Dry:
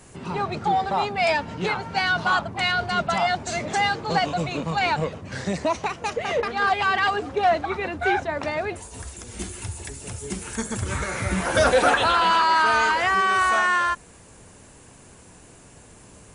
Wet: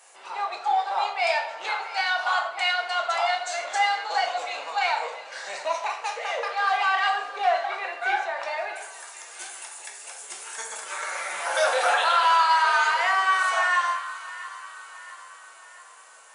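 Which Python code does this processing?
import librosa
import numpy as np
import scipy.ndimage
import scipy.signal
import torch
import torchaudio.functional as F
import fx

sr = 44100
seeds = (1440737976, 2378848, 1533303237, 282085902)

p1 = x + fx.echo_split(x, sr, split_hz=1000.0, low_ms=88, high_ms=674, feedback_pct=52, wet_db=-15.5, dry=0)
p2 = fx.room_shoebox(p1, sr, seeds[0], volume_m3=150.0, walls='mixed', distance_m=0.75)
p3 = 10.0 ** (-5.0 / 20.0) * np.tanh(p2 / 10.0 ** (-5.0 / 20.0))
p4 = scipy.signal.sosfilt(scipy.signal.butter(4, 640.0, 'highpass', fs=sr, output='sos'), p3)
y = p4 * 10.0 ** (-3.0 / 20.0)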